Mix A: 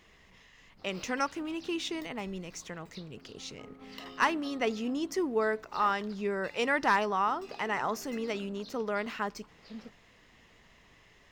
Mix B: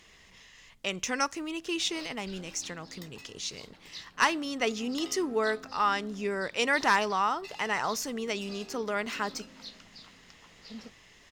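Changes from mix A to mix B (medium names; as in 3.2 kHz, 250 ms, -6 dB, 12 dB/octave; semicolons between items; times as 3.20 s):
background: entry +1.00 s; master: add peaking EQ 7.2 kHz +9.5 dB 2.6 oct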